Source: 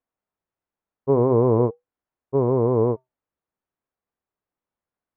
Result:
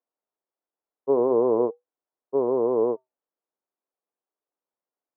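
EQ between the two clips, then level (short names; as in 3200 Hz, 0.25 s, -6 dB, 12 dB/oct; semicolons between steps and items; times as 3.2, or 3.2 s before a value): HPF 300 Hz 12 dB/oct; band-pass 480 Hz, Q 0.56; air absorption 190 m; 0.0 dB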